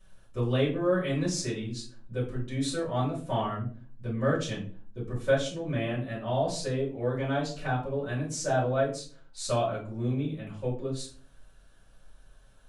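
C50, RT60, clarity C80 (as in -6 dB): 7.0 dB, 0.45 s, 13.0 dB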